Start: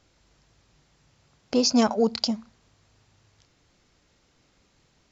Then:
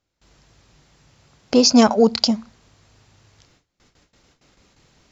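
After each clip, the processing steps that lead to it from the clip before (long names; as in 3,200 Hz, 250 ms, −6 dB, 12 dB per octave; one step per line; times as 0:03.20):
noise gate with hold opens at −54 dBFS
level +7.5 dB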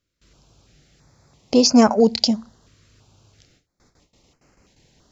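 notch on a step sequencer 3 Hz 810–3,600 Hz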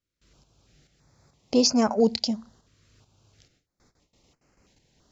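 shaped tremolo saw up 2.3 Hz, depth 55%
level −3.5 dB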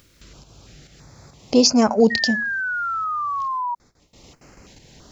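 sound drawn into the spectrogram fall, 0:02.10–0:03.75, 950–1,900 Hz −30 dBFS
upward compression, threshold −41 dBFS
level +5.5 dB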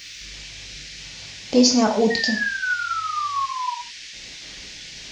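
noise in a band 1,800–6,100 Hz −38 dBFS
reverb whose tail is shaped and stops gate 170 ms falling, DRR 2 dB
level −3 dB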